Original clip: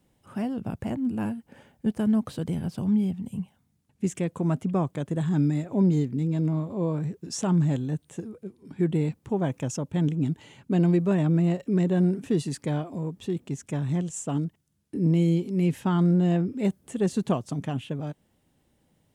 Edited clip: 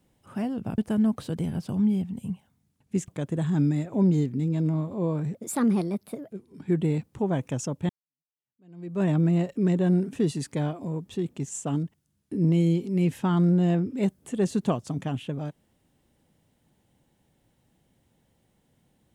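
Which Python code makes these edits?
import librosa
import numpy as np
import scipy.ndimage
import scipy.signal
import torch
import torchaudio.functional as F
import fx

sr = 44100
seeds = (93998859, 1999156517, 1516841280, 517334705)

y = fx.edit(x, sr, fx.cut(start_s=0.78, length_s=1.09),
    fx.cut(start_s=4.17, length_s=0.7),
    fx.speed_span(start_s=7.13, length_s=1.28, speed=1.33),
    fx.fade_in_span(start_s=10.0, length_s=1.14, curve='exp'),
    fx.cut(start_s=13.6, length_s=0.51), tone=tone)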